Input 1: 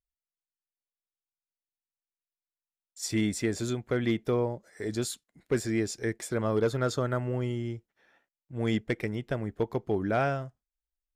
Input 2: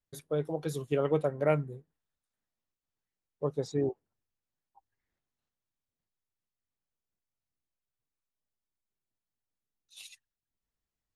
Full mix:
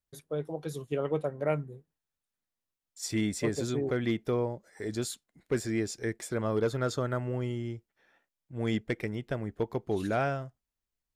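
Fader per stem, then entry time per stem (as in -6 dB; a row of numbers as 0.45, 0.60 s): -2.0, -2.5 dB; 0.00, 0.00 s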